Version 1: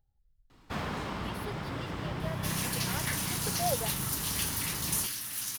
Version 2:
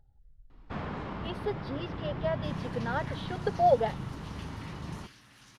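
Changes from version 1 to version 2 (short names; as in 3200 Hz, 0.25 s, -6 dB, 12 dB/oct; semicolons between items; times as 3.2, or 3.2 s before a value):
speech +11.5 dB; second sound -6.5 dB; master: add tape spacing loss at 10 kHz 26 dB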